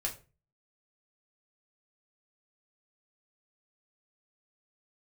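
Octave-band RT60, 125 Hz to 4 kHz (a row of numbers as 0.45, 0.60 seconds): 0.50, 0.40, 0.35, 0.30, 0.30, 0.25 seconds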